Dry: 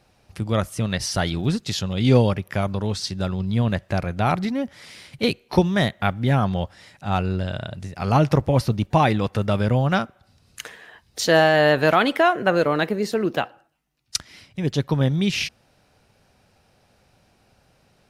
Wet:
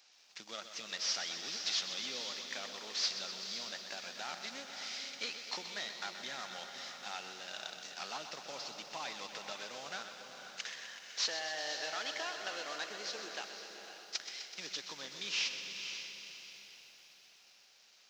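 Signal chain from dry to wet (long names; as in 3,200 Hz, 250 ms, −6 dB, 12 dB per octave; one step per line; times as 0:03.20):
variable-slope delta modulation 32 kbit/s
low-shelf EQ 260 Hz −5 dB
downward compressor 4 to 1, threshold −30 dBFS, peak gain reduction 14 dB
high-pass filter 170 Hz 24 dB per octave
first difference
feedback delay with all-pass diffusion 519 ms, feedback 40%, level −8 dB
feedback echo at a low word length 126 ms, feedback 80%, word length 12 bits, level −10 dB
level +6.5 dB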